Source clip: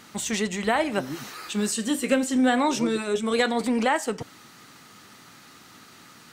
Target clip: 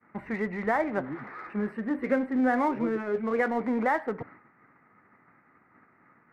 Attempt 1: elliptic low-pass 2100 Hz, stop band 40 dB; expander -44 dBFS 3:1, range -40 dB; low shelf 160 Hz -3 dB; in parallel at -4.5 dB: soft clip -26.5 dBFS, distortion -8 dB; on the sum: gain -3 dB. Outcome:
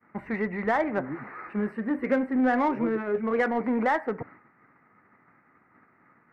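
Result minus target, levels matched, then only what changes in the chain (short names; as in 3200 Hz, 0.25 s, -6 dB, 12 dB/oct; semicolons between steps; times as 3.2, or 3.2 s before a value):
soft clip: distortion -5 dB
change: soft clip -38.5 dBFS, distortion -2 dB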